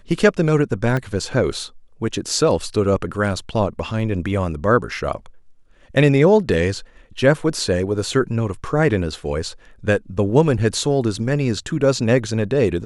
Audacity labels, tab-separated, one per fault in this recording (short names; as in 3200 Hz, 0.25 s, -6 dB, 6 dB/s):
0.970000	0.970000	gap 2.3 ms